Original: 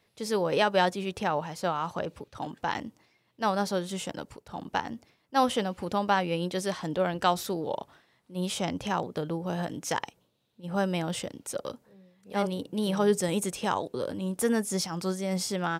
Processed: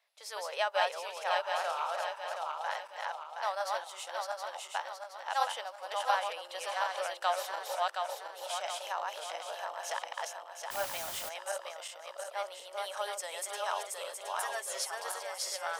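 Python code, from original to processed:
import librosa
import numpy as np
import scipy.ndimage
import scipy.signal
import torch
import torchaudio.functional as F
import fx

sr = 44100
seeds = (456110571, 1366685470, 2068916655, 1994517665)

y = fx.reverse_delay_fb(x, sr, ms=360, feedback_pct=67, wet_db=-1.5)
y = scipy.signal.sosfilt(scipy.signal.ellip(4, 1.0, 80, 610.0, 'highpass', fs=sr, output='sos'), y)
y = fx.room_flutter(y, sr, wall_m=5.2, rt60_s=0.25, at=(1.56, 1.97))
y = fx.quant_dither(y, sr, seeds[0], bits=6, dither='triangular', at=(10.7, 11.28), fade=0.02)
y = fx.comb(y, sr, ms=7.4, depth=0.74, at=(14.42, 14.95))
y = F.gain(torch.from_numpy(y), -5.5).numpy()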